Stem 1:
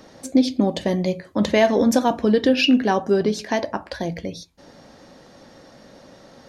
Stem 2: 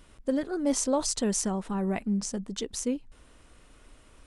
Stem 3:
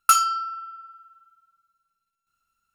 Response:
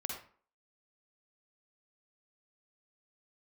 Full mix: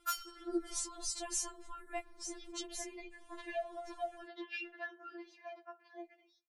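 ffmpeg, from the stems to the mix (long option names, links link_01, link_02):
-filter_complex "[0:a]lowpass=2000,adelay=1950,volume=-8.5dB,afade=type=out:start_time=5.13:duration=0.39:silence=0.334965[link_01];[1:a]dynaudnorm=framelen=170:gausssize=5:maxgain=5dB,tremolo=f=1.5:d=0.41,volume=-8dB[link_02];[2:a]volume=-1.5dB[link_03];[link_01][link_03]amix=inputs=2:normalize=0,highpass=frequency=860:poles=1,acompressor=threshold=-34dB:ratio=2.5,volume=0dB[link_04];[link_02][link_04]amix=inputs=2:normalize=0,afftfilt=real='re*4*eq(mod(b,16),0)':imag='im*4*eq(mod(b,16),0)':win_size=2048:overlap=0.75"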